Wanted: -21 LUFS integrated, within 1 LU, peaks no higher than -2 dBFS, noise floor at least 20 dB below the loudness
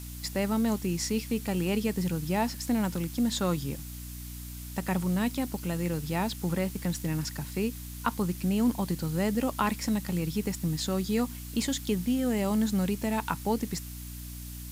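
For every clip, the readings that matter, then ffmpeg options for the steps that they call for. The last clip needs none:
hum 60 Hz; harmonics up to 300 Hz; hum level -39 dBFS; noise floor -40 dBFS; noise floor target -50 dBFS; loudness -30.0 LUFS; peak -12.0 dBFS; loudness target -21.0 LUFS
-> -af "bandreject=f=60:t=h:w=6,bandreject=f=120:t=h:w=6,bandreject=f=180:t=h:w=6,bandreject=f=240:t=h:w=6,bandreject=f=300:t=h:w=6"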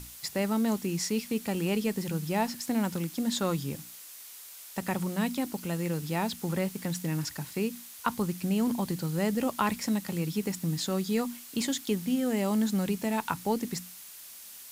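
hum none; noise floor -47 dBFS; noise floor target -51 dBFS
-> -af "afftdn=nr=6:nf=-47"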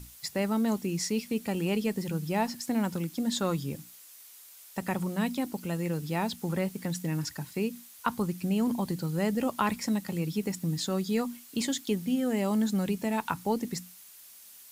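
noise floor -52 dBFS; loudness -31.0 LUFS; peak -12.5 dBFS; loudness target -21.0 LUFS
-> -af "volume=10dB"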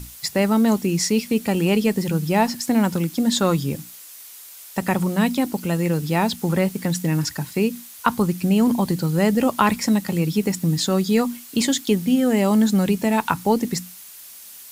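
loudness -21.0 LUFS; peak -2.5 dBFS; noise floor -42 dBFS

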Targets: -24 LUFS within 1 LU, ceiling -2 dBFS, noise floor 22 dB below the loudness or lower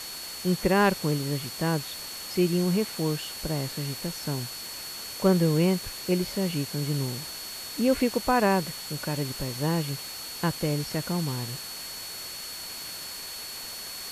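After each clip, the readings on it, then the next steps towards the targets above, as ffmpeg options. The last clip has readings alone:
steady tone 4400 Hz; tone level -39 dBFS; noise floor -38 dBFS; noise floor target -51 dBFS; loudness -28.5 LUFS; peak -9.0 dBFS; loudness target -24.0 LUFS
-> -af "bandreject=f=4.4k:w=30"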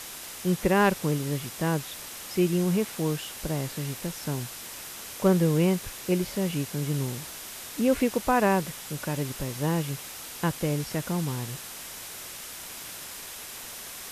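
steady tone none; noise floor -41 dBFS; noise floor target -51 dBFS
-> -af "afftdn=nr=10:nf=-41"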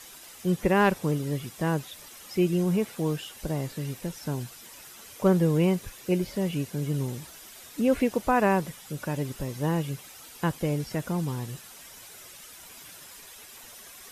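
noise floor -48 dBFS; noise floor target -50 dBFS
-> -af "afftdn=nr=6:nf=-48"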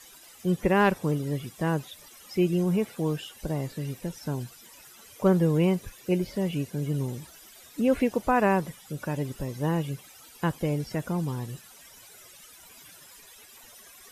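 noise floor -51 dBFS; loudness -28.0 LUFS; peak -9.5 dBFS; loudness target -24.0 LUFS
-> -af "volume=4dB"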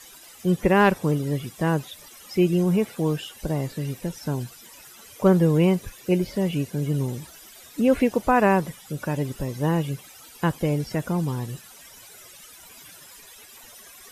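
loudness -24.0 LUFS; peak -5.5 dBFS; noise floor -47 dBFS

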